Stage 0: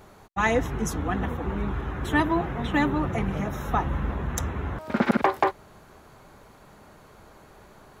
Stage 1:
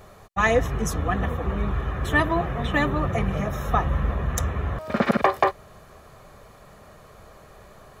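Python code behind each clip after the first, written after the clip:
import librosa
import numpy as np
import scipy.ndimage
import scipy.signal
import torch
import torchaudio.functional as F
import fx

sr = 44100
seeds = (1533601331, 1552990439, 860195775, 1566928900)

y = x + 0.44 * np.pad(x, (int(1.7 * sr / 1000.0), 0))[:len(x)]
y = y * librosa.db_to_amplitude(2.0)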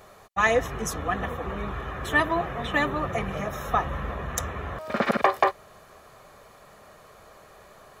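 y = fx.low_shelf(x, sr, hz=240.0, db=-10.5)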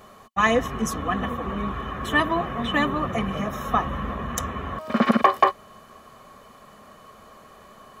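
y = fx.small_body(x, sr, hz=(230.0, 1100.0, 3000.0), ring_ms=45, db=11)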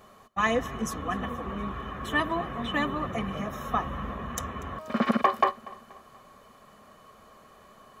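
y = fx.echo_feedback(x, sr, ms=240, feedback_pct=47, wet_db=-21.0)
y = y * librosa.db_to_amplitude(-5.5)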